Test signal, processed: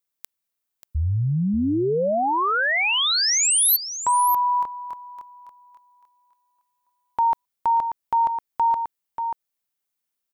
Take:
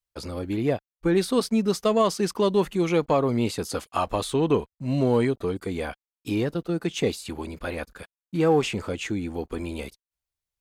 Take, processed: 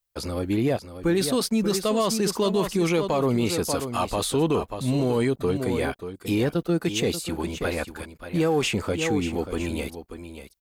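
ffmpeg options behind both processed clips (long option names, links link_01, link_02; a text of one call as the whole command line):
ffmpeg -i in.wav -filter_complex "[0:a]highshelf=frequency=12000:gain=9.5,aecho=1:1:586:0.282,acrossover=split=3100[link_01][link_02];[link_01]alimiter=limit=-19dB:level=0:latency=1:release=25[link_03];[link_03][link_02]amix=inputs=2:normalize=0,volume=3.5dB" out.wav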